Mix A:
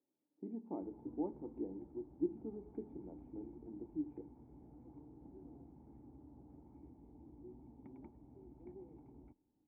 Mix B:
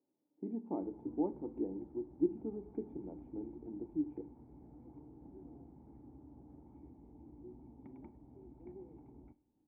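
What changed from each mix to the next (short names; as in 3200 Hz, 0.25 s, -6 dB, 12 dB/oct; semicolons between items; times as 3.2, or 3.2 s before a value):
speech +4.0 dB; reverb: on, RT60 0.35 s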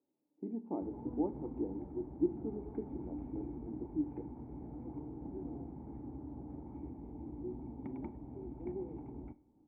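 background +10.0 dB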